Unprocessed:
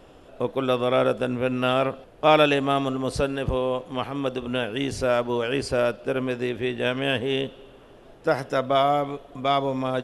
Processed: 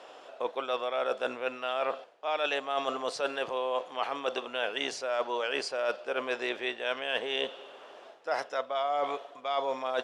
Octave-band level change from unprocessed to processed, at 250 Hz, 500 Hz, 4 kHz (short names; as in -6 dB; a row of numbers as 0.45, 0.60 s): -17.0, -8.5, -4.5 dB